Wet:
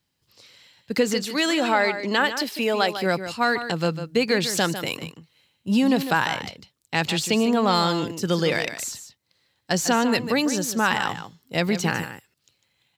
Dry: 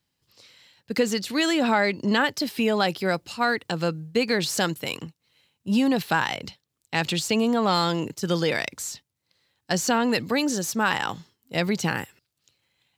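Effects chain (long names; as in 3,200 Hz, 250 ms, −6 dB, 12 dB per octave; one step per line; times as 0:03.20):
0:01.25–0:02.97: high-pass filter 300 Hz 12 dB per octave
single-tap delay 150 ms −10.5 dB
level +1.5 dB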